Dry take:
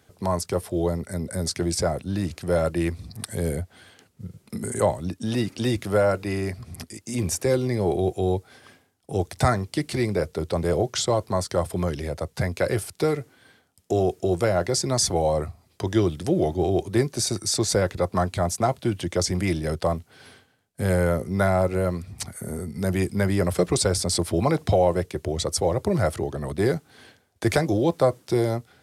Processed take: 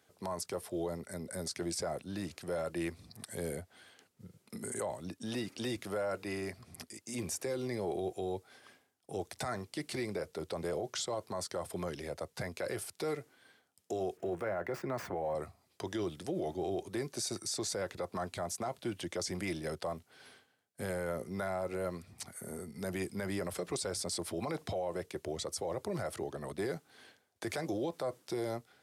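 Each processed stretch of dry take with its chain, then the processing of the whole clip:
0:14.17–0:15.35: gap after every zero crossing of 0.055 ms + high shelf with overshoot 2,800 Hz −14 dB, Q 1.5 + multiband upward and downward compressor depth 40%
whole clip: high-pass filter 320 Hz 6 dB per octave; brickwall limiter −20 dBFS; level −7.5 dB

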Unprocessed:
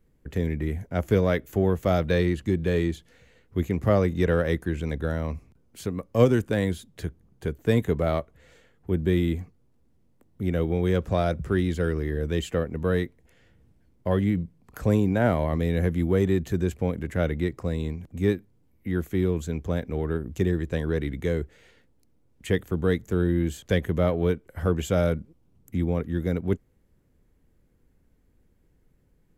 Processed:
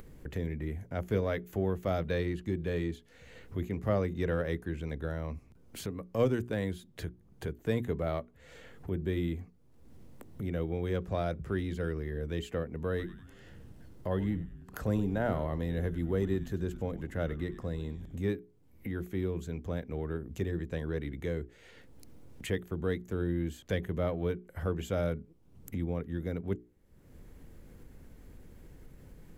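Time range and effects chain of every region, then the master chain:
0:12.89–0:18.23: notch filter 2,300 Hz, Q 8.3 + echo with shifted repeats 97 ms, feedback 42%, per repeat −120 Hz, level −14 dB
whole clip: upward compression, threshold −24 dBFS; mains-hum notches 60/120/180/240/300/360/420 Hz; dynamic equaliser 7,900 Hz, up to −4 dB, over −55 dBFS, Q 0.84; level −8 dB

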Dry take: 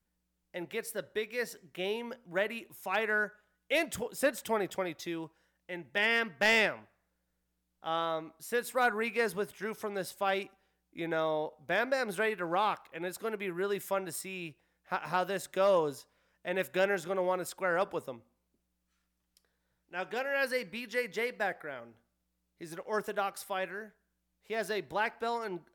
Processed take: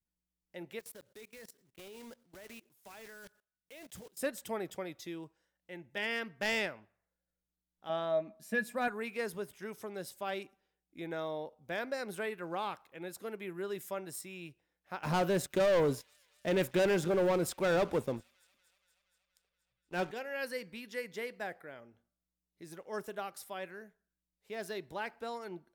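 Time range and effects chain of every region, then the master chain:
0:00.79–0:04.17: one scale factor per block 3 bits + output level in coarse steps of 22 dB
0:07.89–0:08.88: high-shelf EQ 7,400 Hz −6.5 dB + hollow resonant body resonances 210/630/1,700/2,400 Hz, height 16 dB, ringing for 90 ms
0:15.03–0:20.11: spectral tilt −1.5 dB per octave + leveller curve on the samples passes 3 + delay with a high-pass on its return 237 ms, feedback 71%, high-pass 2,800 Hz, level −23 dB
whole clip: noise reduction from a noise print of the clip's start 7 dB; parametric band 1,300 Hz −5 dB 2.8 octaves; level −3.5 dB

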